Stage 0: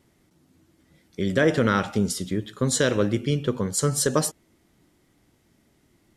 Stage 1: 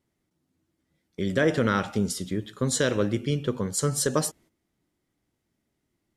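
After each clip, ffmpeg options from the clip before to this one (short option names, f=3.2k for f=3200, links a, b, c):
-af "agate=range=-12dB:threshold=-50dB:ratio=16:detection=peak,volume=-2.5dB"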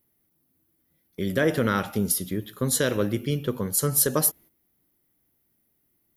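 -af "aexciter=amount=14.4:drive=4.6:freq=11k"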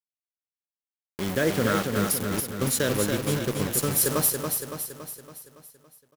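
-filter_complex "[0:a]acrusher=bits=4:mix=0:aa=0.000001,asplit=2[a][b];[b]aecho=0:1:281|562|843|1124|1405|1686|1967:0.562|0.304|0.164|0.0885|0.0478|0.0258|0.0139[c];[a][c]amix=inputs=2:normalize=0,volume=-2dB"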